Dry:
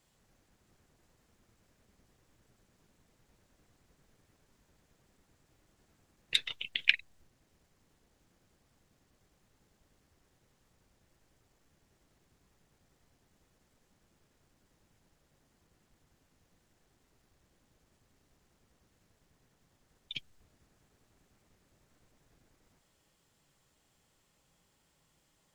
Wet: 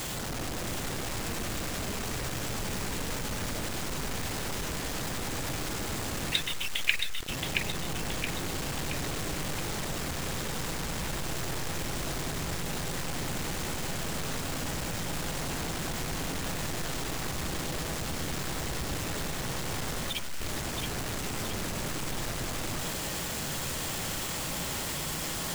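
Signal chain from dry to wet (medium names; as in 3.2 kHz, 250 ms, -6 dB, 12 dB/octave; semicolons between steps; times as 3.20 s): jump at every zero crossing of -27.5 dBFS; two-band feedback delay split 1.2 kHz, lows 103 ms, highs 673 ms, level -4.5 dB; trim -2 dB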